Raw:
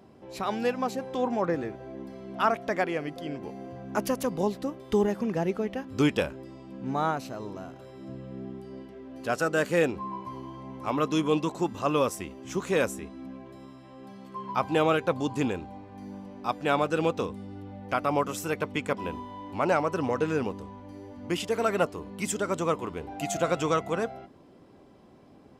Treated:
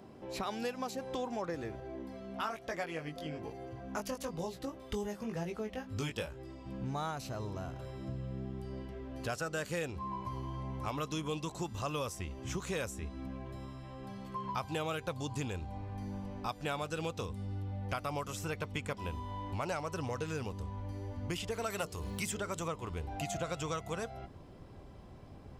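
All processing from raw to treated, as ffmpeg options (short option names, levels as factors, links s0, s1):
-filter_complex "[0:a]asettb=1/sr,asplit=3[s0][s1][s2];[s0]atrim=end=1.804[s3];[s1]atrim=start=1.8:end=6.66,asetpts=PTS-STARTPTS,afade=t=in:d=0.004:c=qsin,afade=t=out:st=4.856:d=0.004:c=qsin,lowshelf=f=67:g=-9.5,flanger=delay=17.5:depth=2.2:speed=1.1[s4];[s2]atrim=start=6.656[s5];[s3][s4]acrossfade=d=0.004:c1=hsin:c2=qsin[s6];[s6][s5]acrossfade=d=0.004:c1=qsin:c2=hsin,asettb=1/sr,asplit=3[s7][s8][s9];[s7]atrim=end=21.704[s10];[s8]atrim=start=21.7:end=22.68,asetpts=PTS-STARTPTS,afade=t=in:d=0.004:c=qsin,afade=t=out:st=0.976:d=0.004:c=qsin,aemphasis=mode=production:type=75fm,bandreject=f=60:t=h:w=6,bandreject=f=120:t=h:w=6,bandreject=f=180:t=h:w=6,bandreject=f=240:t=h:w=6,bandreject=f=300:t=h:w=6,bandreject=f=360:t=h:w=6,bandreject=f=420:t=h:w=6,bandreject=f=480:t=h:w=6,acompressor=mode=upward:threshold=0.0316:ratio=2.5:attack=3.2:release=140:knee=2.83:detection=peak[s11];[s9]atrim=start=22.676[s12];[s10][s11]acrossfade=d=0.004:c1=hsin:c2=qsin[s13];[s13][s12]acrossfade=d=0.004:c1=qsin:c2=hsin,asubboost=boost=7:cutoff=93,acrossover=split=3500|7700[s14][s15][s16];[s14]acompressor=threshold=0.0141:ratio=4[s17];[s15]acompressor=threshold=0.00398:ratio=4[s18];[s16]acompressor=threshold=0.00158:ratio=4[s19];[s17][s18][s19]amix=inputs=3:normalize=0,volume=1.12"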